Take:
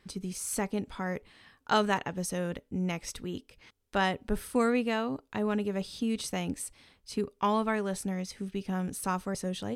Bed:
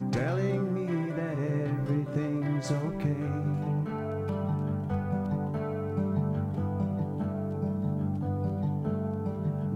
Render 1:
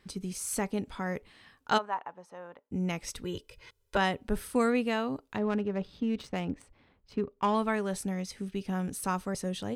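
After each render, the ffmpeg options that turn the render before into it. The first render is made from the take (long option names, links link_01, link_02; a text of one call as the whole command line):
ffmpeg -i in.wav -filter_complex "[0:a]asplit=3[link_01][link_02][link_03];[link_01]afade=type=out:start_time=1.77:duration=0.02[link_04];[link_02]bandpass=frequency=930:width_type=q:width=2.6,afade=type=in:start_time=1.77:duration=0.02,afade=type=out:start_time=2.7:duration=0.02[link_05];[link_03]afade=type=in:start_time=2.7:duration=0.02[link_06];[link_04][link_05][link_06]amix=inputs=3:normalize=0,asettb=1/sr,asplit=3[link_07][link_08][link_09];[link_07]atrim=end=3.244[link_10];[link_08]atrim=start=3.24:end=3.97,asetpts=PTS-STARTPTS,afade=type=in:duration=0.004:curve=qsin,afade=type=out:start_time=0.726:duration=0.004:curve=qsin,aecho=1:1:2:1,atrim=end_sample=32193[link_11];[link_09]atrim=start=3.966[link_12];[link_10][link_11]acrossfade=duration=0.004:curve1=hsin:curve2=qsin[link_13];[link_13][link_12]acrossfade=duration=0.004:curve1=qsin:curve2=hsin,asettb=1/sr,asplit=3[link_14][link_15][link_16];[link_14]atrim=end=5.374[link_17];[link_15]atrim=start=5.37:end=7.55,asetpts=PTS-STARTPTS,afade=type=in:duration=0.004:curve=qsin,afade=type=out:start_time=2.176:duration=0.004:curve=qsin,adynamicsmooth=sensitivity=5:basefreq=1700[link_18];[link_16]atrim=start=7.546[link_19];[link_17][link_18]acrossfade=duration=0.004:curve1=hsin:curve2=qsin[link_20];[link_20][link_19]acrossfade=duration=0.004:curve1=qsin:curve2=hsin" out.wav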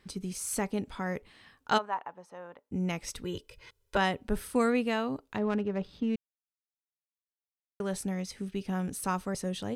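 ffmpeg -i in.wav -filter_complex "[0:a]asplit=3[link_01][link_02][link_03];[link_01]atrim=end=6.16,asetpts=PTS-STARTPTS,afade=type=out:start_time=6.156:duration=0.004:curve=hsin[link_04];[link_02]atrim=start=6.16:end=7.8,asetpts=PTS-STARTPTS,volume=0[link_05];[link_03]atrim=start=7.8,asetpts=PTS-STARTPTS,afade=type=in:duration=0.004:curve=hsin[link_06];[link_04][link_05][link_06]concat=n=3:v=0:a=1" out.wav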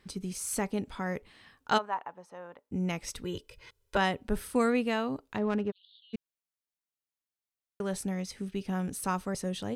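ffmpeg -i in.wav -filter_complex "[0:a]asplit=3[link_01][link_02][link_03];[link_01]afade=type=out:start_time=5.7:duration=0.02[link_04];[link_02]asuperpass=centerf=3600:order=12:qfactor=2.5,afade=type=in:start_time=5.7:duration=0.02,afade=type=out:start_time=6.13:duration=0.02[link_05];[link_03]afade=type=in:start_time=6.13:duration=0.02[link_06];[link_04][link_05][link_06]amix=inputs=3:normalize=0" out.wav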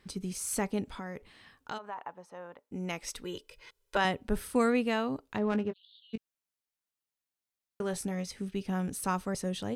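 ffmpeg -i in.wav -filter_complex "[0:a]asettb=1/sr,asplit=3[link_01][link_02][link_03];[link_01]atrim=end=0.844[link_04];[link_02]atrim=start=0.84:end=1.98,asetpts=PTS-STARTPTS,afade=type=in:duration=0.004:curve=qsin,afade=type=out:start_time=1.136:duration=0.004:curve=qsin,acompressor=threshold=-36dB:ratio=4:attack=3.2:release=140:knee=1:detection=peak[link_05];[link_03]atrim=start=1.976[link_06];[link_04][link_05]acrossfade=duration=0.004:curve1=hsin:curve2=qsin[link_07];[link_07][link_06]acrossfade=duration=0.004:curve1=qsin:curve2=hsin,asettb=1/sr,asplit=3[link_08][link_09][link_10];[link_08]atrim=end=2.654[link_11];[link_09]atrim=start=2.65:end=4.05,asetpts=PTS-STARTPTS,afade=type=in:duration=0.004:curve=qsin,afade=type=out:start_time=1.396:duration=0.004:curve=qsin,equalizer=frequency=85:width_type=o:width=2.3:gain=-12.5[link_12];[link_10]atrim=start=4.046[link_13];[link_11][link_12]acrossfade=duration=0.004:curve1=hsin:curve2=qsin[link_14];[link_14][link_13]acrossfade=duration=0.004:curve1=qsin:curve2=hsin,asettb=1/sr,asplit=3[link_15][link_16][link_17];[link_15]atrim=end=5.504[link_18];[link_16]atrim=start=5.5:end=8.29,asetpts=PTS-STARTPTS,afade=type=in:duration=0.004:curve=qsin,afade=type=out:start_time=2.786:duration=0.004:curve=qsin,asplit=2[link_19][link_20];[link_20]adelay=18,volume=-10dB[link_21];[link_19][link_21]amix=inputs=2:normalize=0,atrim=end_sample=123039[link_22];[link_17]atrim=start=8.286[link_23];[link_18][link_22]acrossfade=duration=0.004:curve1=hsin:curve2=qsin[link_24];[link_24][link_23]acrossfade=duration=0.004:curve1=qsin:curve2=hsin" out.wav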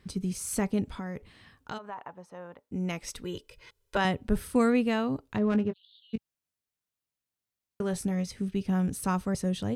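ffmpeg -i in.wav -af "equalizer=frequency=91:width_type=o:width=2.6:gain=9.5,bandreject=frequency=840:width=28" out.wav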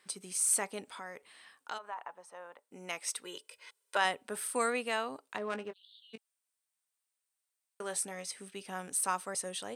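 ffmpeg -i in.wav -af "highpass=670,equalizer=frequency=8700:width_type=o:width=0.23:gain=13.5" out.wav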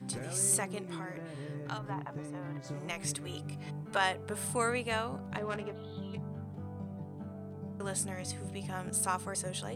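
ffmpeg -i in.wav -i bed.wav -filter_complex "[1:a]volume=-12dB[link_01];[0:a][link_01]amix=inputs=2:normalize=0" out.wav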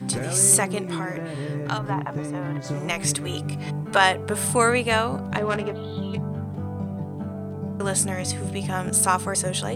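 ffmpeg -i in.wav -af "volume=12dB" out.wav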